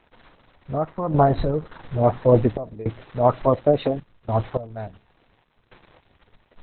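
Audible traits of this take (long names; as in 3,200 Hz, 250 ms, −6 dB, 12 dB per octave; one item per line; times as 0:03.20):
a quantiser's noise floor 8 bits, dither none
sample-and-hold tremolo 3.5 Hz, depth 90%
Opus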